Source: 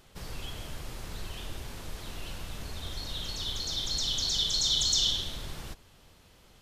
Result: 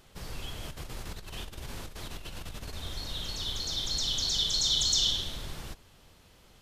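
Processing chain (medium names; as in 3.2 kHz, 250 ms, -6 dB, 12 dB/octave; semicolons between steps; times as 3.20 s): 0.63–2.73 s: compressor with a negative ratio -39 dBFS, ratio -0.5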